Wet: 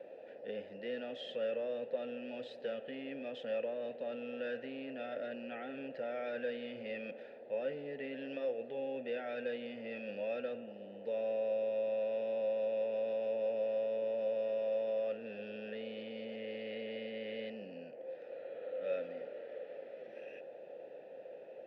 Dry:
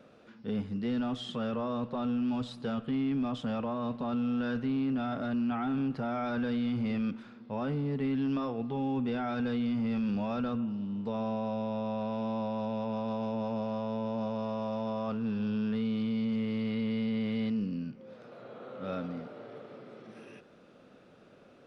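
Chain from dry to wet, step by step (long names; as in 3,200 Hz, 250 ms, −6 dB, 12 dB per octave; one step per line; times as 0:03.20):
noise in a band 110–780 Hz −48 dBFS
formant filter e
tilt shelving filter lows −4 dB, about 710 Hz
level +7 dB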